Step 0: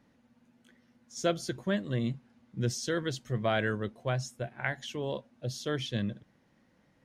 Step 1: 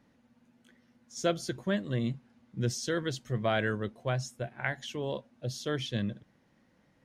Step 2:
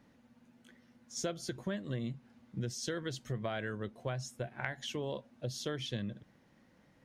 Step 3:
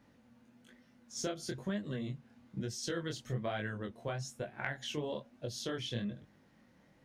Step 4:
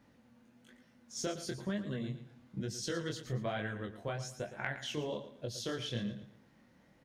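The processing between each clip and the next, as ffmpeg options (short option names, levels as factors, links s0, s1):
-af anull
-af "acompressor=threshold=0.0158:ratio=5,volume=1.19"
-af "flanger=delay=19:depth=7.5:speed=1.1,volume=1.41"
-af "aecho=1:1:114|228|342:0.251|0.0804|0.0257"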